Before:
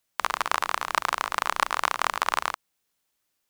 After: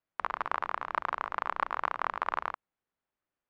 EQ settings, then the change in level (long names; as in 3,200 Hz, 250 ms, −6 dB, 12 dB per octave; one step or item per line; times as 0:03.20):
low-pass filter 1,700 Hz 12 dB per octave
−5.0 dB